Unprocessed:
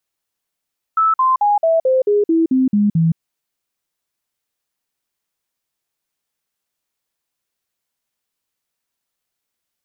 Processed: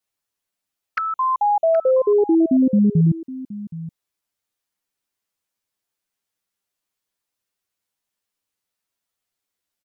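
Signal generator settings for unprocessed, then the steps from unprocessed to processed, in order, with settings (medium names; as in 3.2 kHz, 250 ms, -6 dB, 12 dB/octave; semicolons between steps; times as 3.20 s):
stepped sine 1.31 kHz down, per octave 3, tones 10, 0.17 s, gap 0.05 s -11 dBFS
touch-sensitive flanger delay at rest 10.1 ms, full sweep at -17 dBFS; delay 771 ms -16 dB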